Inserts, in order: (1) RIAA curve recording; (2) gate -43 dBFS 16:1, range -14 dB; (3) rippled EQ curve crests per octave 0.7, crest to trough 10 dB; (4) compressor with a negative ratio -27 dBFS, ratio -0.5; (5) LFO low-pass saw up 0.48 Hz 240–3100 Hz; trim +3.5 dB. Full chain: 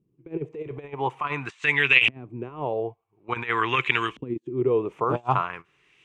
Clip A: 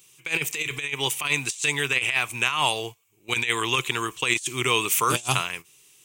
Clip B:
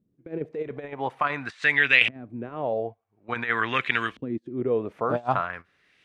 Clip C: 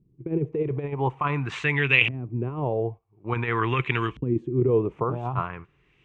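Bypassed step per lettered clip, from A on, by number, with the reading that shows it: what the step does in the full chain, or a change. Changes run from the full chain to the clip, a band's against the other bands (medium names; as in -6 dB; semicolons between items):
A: 5, 4 kHz band +7.0 dB; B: 3, 125 Hz band -3.0 dB; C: 1, 125 Hz band +11.0 dB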